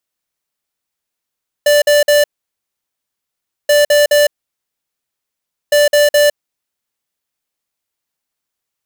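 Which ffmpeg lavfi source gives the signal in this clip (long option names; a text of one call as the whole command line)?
ffmpeg -f lavfi -i "aevalsrc='0.335*(2*lt(mod(587*t,1),0.5)-1)*clip(min(mod(mod(t,2.03),0.21),0.16-mod(mod(t,2.03),0.21))/0.005,0,1)*lt(mod(t,2.03),0.63)':duration=6.09:sample_rate=44100" out.wav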